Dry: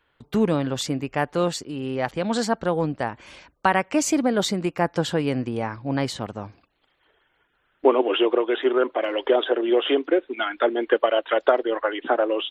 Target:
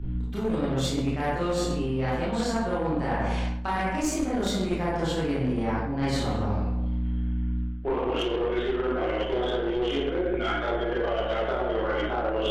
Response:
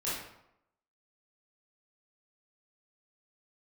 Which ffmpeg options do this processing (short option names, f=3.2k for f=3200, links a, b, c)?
-filter_complex "[0:a]aeval=exprs='val(0)+0.0224*(sin(2*PI*60*n/s)+sin(2*PI*2*60*n/s)/2+sin(2*PI*3*60*n/s)/3+sin(2*PI*4*60*n/s)/4+sin(2*PI*5*60*n/s)/5)':c=same[a];[1:a]atrim=start_sample=2205,asetrate=34839,aresample=44100[b];[a][b]afir=irnorm=-1:irlink=0,acrossover=split=160|4700[c][d][e];[d]alimiter=limit=-8dB:level=0:latency=1:release=117[f];[c][f][e]amix=inputs=3:normalize=0,aeval=exprs='0.596*(cos(1*acos(clip(val(0)/0.596,-1,1)))-cos(1*PI/2))+0.119*(cos(4*acos(clip(val(0)/0.596,-1,1)))-cos(4*PI/2))+0.075*(cos(6*acos(clip(val(0)/0.596,-1,1)))-cos(6*PI/2))':c=same,areverse,acompressor=threshold=-25dB:ratio=6,areverse,lowshelf=f=63:g=9"